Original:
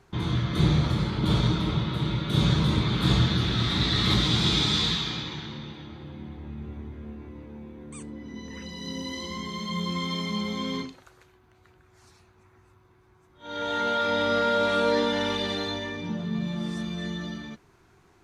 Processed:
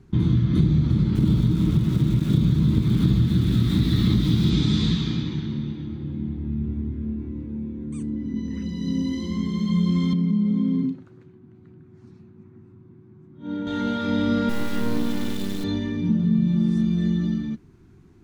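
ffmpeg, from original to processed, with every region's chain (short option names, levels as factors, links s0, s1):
-filter_complex "[0:a]asettb=1/sr,asplit=3[s0][s1][s2];[s0]atrim=end=1.154[s3];[s1]atrim=start=1.15:end=4.5,asetpts=PTS-STARTPTS,afade=t=in:d=0.004:c=qsin,afade=t=out:st=3.346:d=0.004:c=qsin,lowpass=8100,aeval=exprs='val(0)*gte(abs(val(0)),0.0251)':c=same[s4];[s2]atrim=start=4.496[s5];[s3][s4]acrossfade=d=0.004:c1=hsin:c2=qsin[s6];[s6][s5]acrossfade=d=0.004:c1=qsin:c2=hsin,asettb=1/sr,asplit=3[s7][s8][s9];[s7]atrim=end=10.134[s10];[s8]atrim=start=10.13:end=13.67,asetpts=PTS-STARTPTS,afade=t=in:d=0.004:c=qsin,afade=t=out:st=3.536:d=0.004:c=qsin,highpass=f=150:w=0.5412,highpass=f=150:w=1.3066,aemphasis=mode=reproduction:type=riaa,acompressor=threshold=0.0316:ratio=5:attack=3.2:release=140:knee=1:detection=peak[s11];[s9]atrim=start=13.666[s12];[s10][s11]acrossfade=d=0.004:c1=hsin:c2=qsin[s13];[s13][s12]acrossfade=d=0.004:c1=qsin:c2=hsin,asettb=1/sr,asplit=3[s14][s15][s16];[s14]atrim=end=14.494[s17];[s15]atrim=start=14.49:end=15.64,asetpts=PTS-STARTPTS,afade=t=in:d=0.004:c=qsin,afade=t=out:st=1.146:d=0.004:c=qsin,acrusher=bits=3:dc=4:mix=0:aa=0.000001,equalizer=f=63:t=o:w=2.9:g=-6[s18];[s16]atrim=start=15.636[s19];[s17][s18]acrossfade=d=0.004:c1=hsin:c2=qsin[s20];[s20][s19]acrossfade=d=0.004:c1=qsin:c2=hsin,lowshelf=f=400:t=q:w=1.5:g=14,acompressor=threshold=0.282:ratio=6,volume=0.596"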